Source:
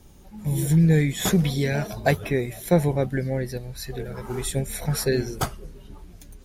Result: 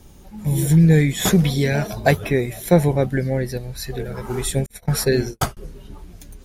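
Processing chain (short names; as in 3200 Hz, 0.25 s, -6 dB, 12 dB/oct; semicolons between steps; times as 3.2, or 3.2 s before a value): 4.66–5.57 gate -29 dBFS, range -48 dB; gain +4.5 dB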